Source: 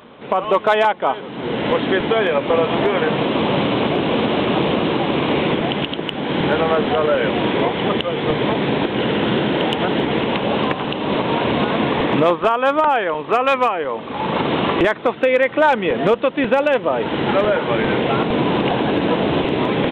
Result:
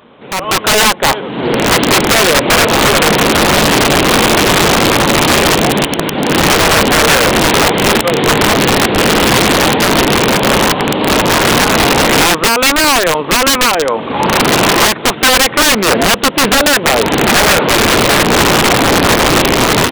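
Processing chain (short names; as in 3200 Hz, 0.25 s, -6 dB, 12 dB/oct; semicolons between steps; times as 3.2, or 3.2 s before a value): wrapped overs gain 12.5 dB; AGC gain up to 11 dB; Doppler distortion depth 0.28 ms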